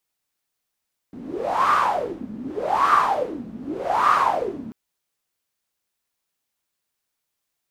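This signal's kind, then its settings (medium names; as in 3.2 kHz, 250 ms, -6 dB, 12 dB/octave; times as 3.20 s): wind-like swept noise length 3.59 s, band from 220 Hz, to 1.2 kHz, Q 9.7, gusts 3, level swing 16.5 dB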